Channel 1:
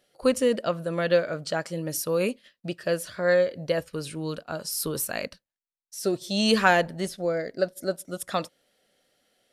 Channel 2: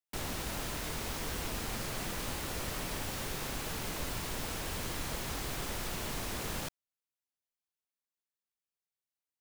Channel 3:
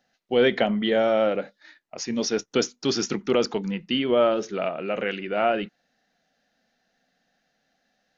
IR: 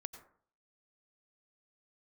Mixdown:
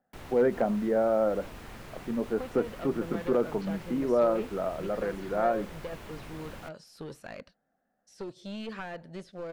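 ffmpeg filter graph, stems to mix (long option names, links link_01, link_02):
-filter_complex "[0:a]lowpass=6500,acompressor=threshold=-25dB:ratio=4,aeval=exprs='clip(val(0),-1,0.0398)':channel_layout=same,adelay=2150,volume=-8.5dB[link_01];[1:a]volume=-6dB[link_02];[2:a]lowpass=frequency=1400:width=0.5412,lowpass=frequency=1400:width=1.3066,volume=-4dB,asplit=2[link_03][link_04];[link_04]apad=whole_len=414879[link_05];[link_02][link_05]sidechaincompress=threshold=-28dB:ratio=8:attack=16:release=107[link_06];[link_01][link_06][link_03]amix=inputs=3:normalize=0,acrossover=split=3000[link_07][link_08];[link_08]acompressor=threshold=-57dB:ratio=4:attack=1:release=60[link_09];[link_07][link_09]amix=inputs=2:normalize=0,asoftclip=type=hard:threshold=-16.5dB"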